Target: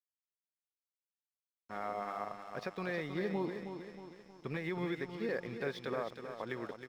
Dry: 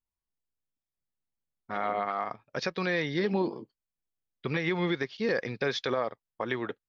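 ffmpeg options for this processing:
ffmpeg -i in.wav -filter_complex "[0:a]asplit=2[link_01][link_02];[link_02]aecho=0:1:316|632|948|1264|1580|1896:0.398|0.215|0.116|0.0627|0.0339|0.0183[link_03];[link_01][link_03]amix=inputs=2:normalize=0,aeval=exprs='val(0)+0.00224*sin(2*PI*5300*n/s)':channel_layout=same,aemphasis=mode=reproduction:type=75kf,aeval=exprs='sgn(val(0))*max(abs(val(0))-0.00299,0)':channel_layout=same,volume=-7.5dB" out.wav

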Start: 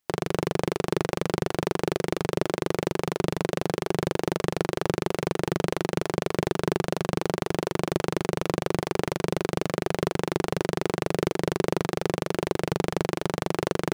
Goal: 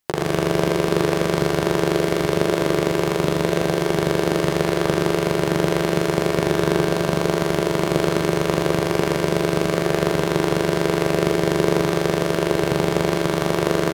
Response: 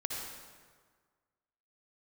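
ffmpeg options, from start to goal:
-filter_complex "[0:a]asplit=2[link_01][link_02];[link_02]adelay=14,volume=-12dB[link_03];[link_01][link_03]amix=inputs=2:normalize=0,aecho=1:1:112|224|336|448|560|672|784|896:0.562|0.321|0.183|0.104|0.0594|0.0338|0.0193|0.011[link_04];[1:a]atrim=start_sample=2205,atrim=end_sample=3528[link_05];[link_04][link_05]afir=irnorm=-1:irlink=0,volume=5.5dB"

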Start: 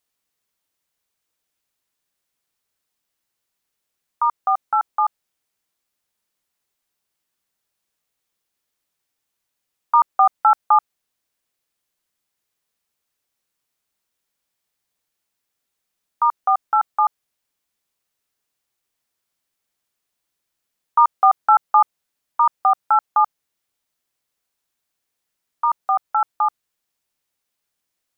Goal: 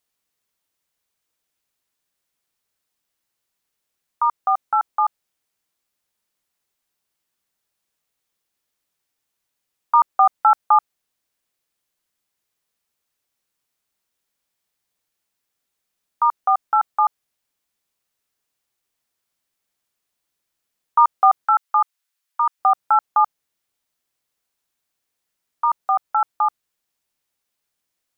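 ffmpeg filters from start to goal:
ffmpeg -i in.wav -filter_complex "[0:a]asettb=1/sr,asplit=3[link_01][link_02][link_03];[link_01]atrim=end=21.454[link_04];[link_02]atrim=start=21.45:end=22.59,asetpts=PTS-STARTPTS,afade=type=in:duration=0.004:curve=qsin,afade=type=out:start_time=1.136:duration=0.004:curve=qsin,highpass=1100[link_05];[link_03]atrim=start=22.586[link_06];[link_04][link_05]acrossfade=duration=0.004:curve1=hsin:curve2=qsin[link_07];[link_07][link_06]acrossfade=duration=0.004:curve1=qsin:curve2=hsin" out.wav

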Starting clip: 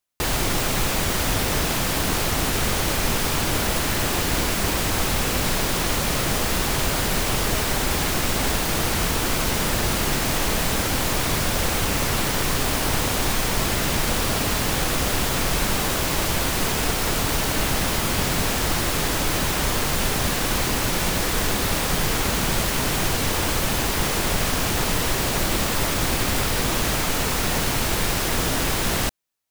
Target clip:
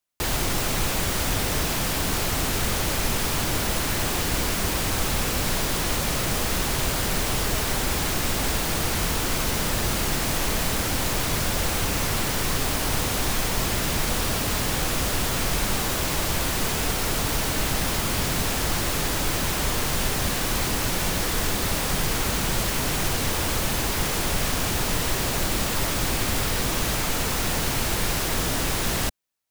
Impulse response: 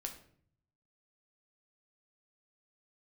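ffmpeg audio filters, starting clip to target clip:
-filter_complex "[0:a]acrossover=split=150|4300[link_01][link_02][link_03];[link_02]asoftclip=type=hard:threshold=-24dB[link_04];[link_01][link_04][link_03]amix=inputs=3:normalize=0,volume=-1.5dB"

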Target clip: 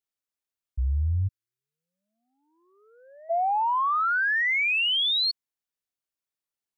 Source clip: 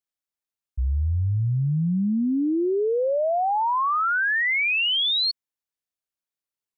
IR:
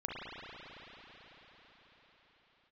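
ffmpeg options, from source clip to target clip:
-filter_complex "[0:a]acontrast=82,asplit=3[link_01][link_02][link_03];[link_01]afade=type=out:start_time=1.27:duration=0.02[link_04];[link_02]highpass=frequency=1200:width=0.5412,highpass=frequency=1200:width=1.3066,afade=type=in:start_time=1.27:duration=0.02,afade=type=out:start_time=3.29:duration=0.02[link_05];[link_03]afade=type=in:start_time=3.29:duration=0.02[link_06];[link_04][link_05][link_06]amix=inputs=3:normalize=0,volume=-8.5dB"

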